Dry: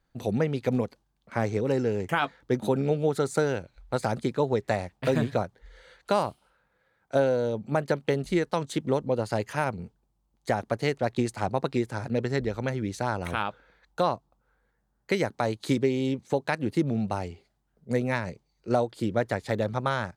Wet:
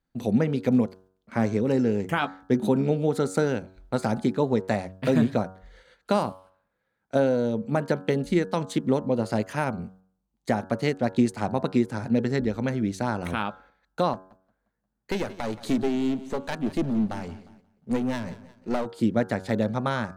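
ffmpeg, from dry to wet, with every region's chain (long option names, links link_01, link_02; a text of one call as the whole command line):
ffmpeg -i in.wav -filter_complex "[0:a]asettb=1/sr,asplit=3[link_01][link_02][link_03];[link_01]atrim=end=14.134[link_04];[link_02]atrim=start=14.13:end=18.86,asetpts=PTS-STARTPTS,afade=type=in:duration=0.004:curve=qsin,afade=type=out:start_time=4.726:duration=0.004:curve=qsin,aeval=exprs='clip(val(0),-1,0.0237)':channel_layout=same,aecho=1:1:177|354|531|708:0.141|0.0636|0.0286|0.0129,atrim=end_sample=208593[link_05];[link_03]atrim=start=18.856[link_06];[link_04][link_05]acrossfade=duration=0.004:curve1=hsin:curve2=qsin[link_07];[link_07][link_06]acrossfade=duration=0.004:curve1=qsin:curve2=hsin,equalizer=frequency=230:width=2:gain=8.5,agate=range=-8dB:threshold=-52dB:ratio=16:detection=peak,bandreject=frequency=93.86:width_type=h:width=4,bandreject=frequency=187.72:width_type=h:width=4,bandreject=frequency=281.58:width_type=h:width=4,bandreject=frequency=375.44:width_type=h:width=4,bandreject=frequency=469.3:width_type=h:width=4,bandreject=frequency=563.16:width_type=h:width=4,bandreject=frequency=657.02:width_type=h:width=4,bandreject=frequency=750.88:width_type=h:width=4,bandreject=frequency=844.74:width_type=h:width=4,bandreject=frequency=938.6:width_type=h:width=4,bandreject=frequency=1032.46:width_type=h:width=4,bandreject=frequency=1126.32:width_type=h:width=4,bandreject=frequency=1220.18:width_type=h:width=4,bandreject=frequency=1314.04:width_type=h:width=4,bandreject=frequency=1407.9:width_type=h:width=4,bandreject=frequency=1501.76:width_type=h:width=4,bandreject=frequency=1595.62:width_type=h:width=4,bandreject=frequency=1689.48:width_type=h:width=4" out.wav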